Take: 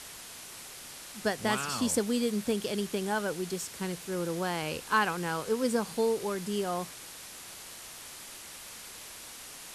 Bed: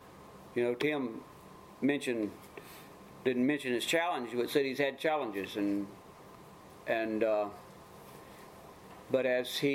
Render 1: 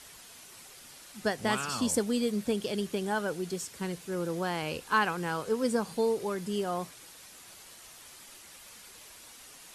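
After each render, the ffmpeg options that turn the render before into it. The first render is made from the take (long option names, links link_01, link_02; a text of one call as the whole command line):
ffmpeg -i in.wav -af "afftdn=noise_reduction=7:noise_floor=-46" out.wav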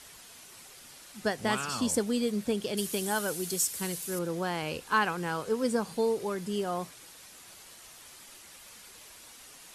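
ffmpeg -i in.wav -filter_complex "[0:a]asettb=1/sr,asplit=3[link_01][link_02][link_03];[link_01]atrim=end=2.774[link_04];[link_02]atrim=start=2.77:end=4.19,asetpts=PTS-STARTPTS,afade=type=in:duration=0.004:curve=qsin,afade=type=out:start_time=1.416:duration=0.004:curve=qsin,aemphasis=mode=production:type=75fm[link_05];[link_03]atrim=start=4.186[link_06];[link_04][link_05]acrossfade=duration=0.004:curve1=hsin:curve2=qsin[link_07];[link_07][link_06]acrossfade=duration=0.004:curve1=qsin:curve2=hsin" out.wav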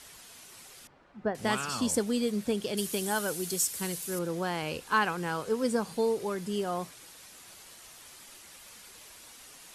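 ffmpeg -i in.wav -filter_complex "[0:a]asettb=1/sr,asplit=3[link_01][link_02][link_03];[link_01]atrim=end=0.874[link_04];[link_02]atrim=start=0.87:end=1.35,asetpts=PTS-STARTPTS,afade=type=in:duration=0.004:curve=qsin,afade=type=out:start_time=0.476:duration=0.004:curve=qsin,lowpass=1200[link_05];[link_03]atrim=start=1.346[link_06];[link_04][link_05]acrossfade=duration=0.004:curve1=hsin:curve2=qsin[link_07];[link_07][link_06]acrossfade=duration=0.004:curve1=qsin:curve2=hsin" out.wav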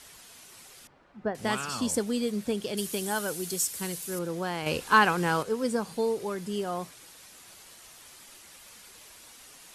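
ffmpeg -i in.wav -filter_complex "[0:a]asettb=1/sr,asplit=3[link_01][link_02][link_03];[link_01]atrim=end=4.664[link_04];[link_02]atrim=start=4.66:end=5.43,asetpts=PTS-STARTPTS,afade=type=in:duration=0.004:curve=qsin,afade=type=out:start_time=0.766:duration=0.004:curve=qsin,acontrast=60[link_05];[link_03]atrim=start=5.426[link_06];[link_04][link_05]acrossfade=duration=0.004:curve1=hsin:curve2=qsin[link_07];[link_07][link_06]acrossfade=duration=0.004:curve1=qsin:curve2=hsin" out.wav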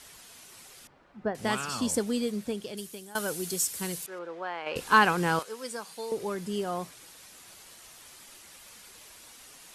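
ffmpeg -i in.wav -filter_complex "[0:a]asettb=1/sr,asplit=3[link_01][link_02][link_03];[link_01]atrim=end=4.064[link_04];[link_02]atrim=start=4.06:end=4.76,asetpts=PTS-STARTPTS,afade=type=in:duration=0.004:curve=qsin,afade=type=out:start_time=0.696:duration=0.004:curve=qsin,highpass=570,lowpass=2300[link_05];[link_03]atrim=start=4.756[link_06];[link_04][link_05]acrossfade=duration=0.004:curve1=hsin:curve2=qsin[link_07];[link_07][link_06]acrossfade=duration=0.004:curve1=qsin:curve2=hsin,asettb=1/sr,asplit=3[link_08][link_09][link_10];[link_08]atrim=end=5.394[link_11];[link_09]atrim=start=5.39:end=6.12,asetpts=PTS-STARTPTS,afade=type=in:duration=0.004:curve=qsin,afade=type=out:start_time=0.726:duration=0.004:curve=qsin,highpass=frequency=1400:poles=1[link_12];[link_10]atrim=start=6.116[link_13];[link_11][link_12]acrossfade=duration=0.004:curve1=hsin:curve2=qsin[link_14];[link_14][link_13]acrossfade=duration=0.004:curve1=qsin:curve2=hsin,asplit=2[link_15][link_16];[link_15]atrim=end=3.15,asetpts=PTS-STARTPTS,afade=type=out:start_time=2.15:duration=1:silence=0.112202[link_17];[link_16]atrim=start=3.15,asetpts=PTS-STARTPTS,afade=type=in:duration=0.004:curve=hsin:silence=0.112202[link_18];[link_17][link_18]concat=n=2:v=0:a=1" out.wav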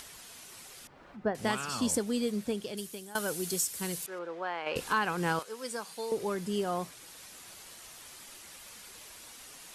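ffmpeg -i in.wav -af "acompressor=mode=upward:threshold=-45dB:ratio=2.5,alimiter=limit=-18.5dB:level=0:latency=1:release=409" out.wav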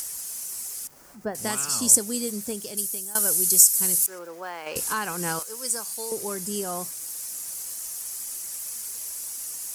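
ffmpeg -i in.wav -af "aeval=exprs='val(0)*gte(abs(val(0)),0.00126)':channel_layout=same,aexciter=amount=7.5:drive=3.9:freq=5200" out.wav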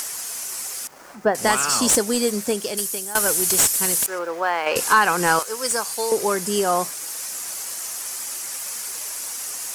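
ffmpeg -i in.wav -filter_complex "[0:a]asplit=2[link_01][link_02];[link_02]highpass=frequency=720:poles=1,volume=19dB,asoftclip=type=tanh:threshold=-1.5dB[link_03];[link_01][link_03]amix=inputs=2:normalize=0,lowpass=frequency=2000:poles=1,volume=-6dB,asplit=2[link_04][link_05];[link_05]aeval=exprs='sgn(val(0))*max(abs(val(0))-0.0075,0)':channel_layout=same,volume=-6dB[link_06];[link_04][link_06]amix=inputs=2:normalize=0" out.wav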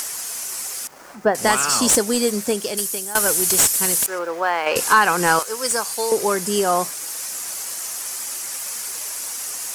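ffmpeg -i in.wav -af "volume=1.5dB" out.wav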